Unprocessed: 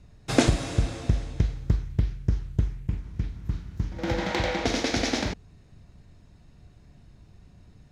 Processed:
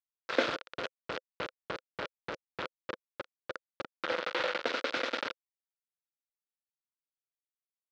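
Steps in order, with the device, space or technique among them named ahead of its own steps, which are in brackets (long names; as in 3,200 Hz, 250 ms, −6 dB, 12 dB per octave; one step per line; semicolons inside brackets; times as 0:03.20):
hand-held game console (bit reduction 4 bits; loudspeaker in its box 460–4,100 Hz, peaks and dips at 520 Hz +9 dB, 750 Hz −6 dB, 1,400 Hz +8 dB)
level −6 dB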